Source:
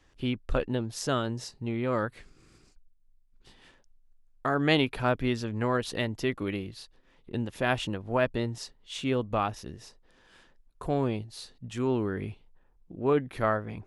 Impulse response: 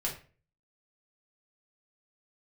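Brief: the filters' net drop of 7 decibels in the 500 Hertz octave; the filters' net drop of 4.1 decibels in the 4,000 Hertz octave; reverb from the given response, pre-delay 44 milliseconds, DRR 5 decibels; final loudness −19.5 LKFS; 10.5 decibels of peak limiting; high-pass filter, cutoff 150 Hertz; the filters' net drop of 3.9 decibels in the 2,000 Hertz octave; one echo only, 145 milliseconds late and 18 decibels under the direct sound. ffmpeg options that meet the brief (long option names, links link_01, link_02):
-filter_complex "[0:a]highpass=150,equalizer=frequency=500:width_type=o:gain=-9,equalizer=frequency=2000:width_type=o:gain=-3.5,equalizer=frequency=4000:width_type=o:gain=-4,alimiter=level_in=0.5dB:limit=-24dB:level=0:latency=1,volume=-0.5dB,aecho=1:1:145:0.126,asplit=2[link_01][link_02];[1:a]atrim=start_sample=2205,adelay=44[link_03];[link_02][link_03]afir=irnorm=-1:irlink=0,volume=-8.5dB[link_04];[link_01][link_04]amix=inputs=2:normalize=0,volume=16.5dB"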